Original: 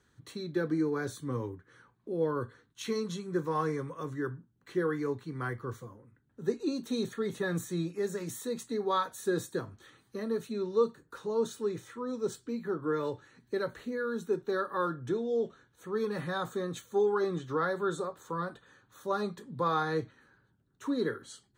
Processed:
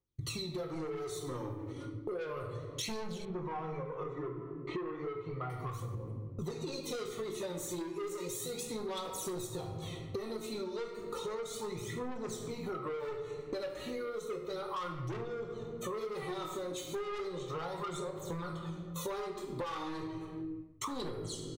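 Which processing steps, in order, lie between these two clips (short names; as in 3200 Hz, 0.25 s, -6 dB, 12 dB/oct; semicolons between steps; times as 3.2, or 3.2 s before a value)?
gate -57 dBFS, range -40 dB; Butterworth band-stop 1600 Hz, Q 2.3; doubler 19 ms -7 dB; phaser 0.33 Hz, delay 3.6 ms, feedback 71%; soft clip -30 dBFS, distortion -6 dB; bell 200 Hz -6.5 dB 0.48 oct; shoebox room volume 380 m³, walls mixed, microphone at 0.9 m; dynamic EQ 280 Hz, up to -6 dB, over -50 dBFS, Q 2.7; 3.25–5.5 LPF 2100 Hz 12 dB/oct; compressor 16:1, threshold -48 dBFS, peak gain reduction 20.5 dB; gain +12 dB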